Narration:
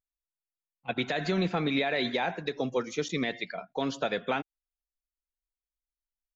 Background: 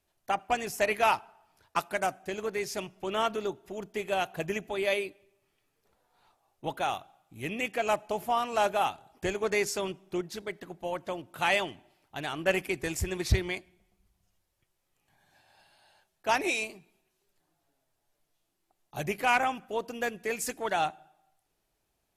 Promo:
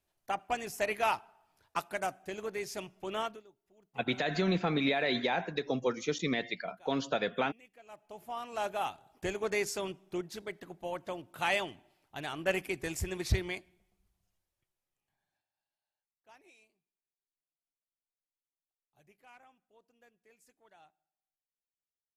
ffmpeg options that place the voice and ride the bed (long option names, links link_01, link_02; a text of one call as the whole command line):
ffmpeg -i stem1.wav -i stem2.wav -filter_complex "[0:a]adelay=3100,volume=-1.5dB[link_01];[1:a]volume=18dB,afade=type=out:start_time=3.17:duration=0.26:silence=0.0794328,afade=type=in:start_time=7.88:duration=1.31:silence=0.0707946,afade=type=out:start_time=13.71:duration=1.78:silence=0.0375837[link_02];[link_01][link_02]amix=inputs=2:normalize=0" out.wav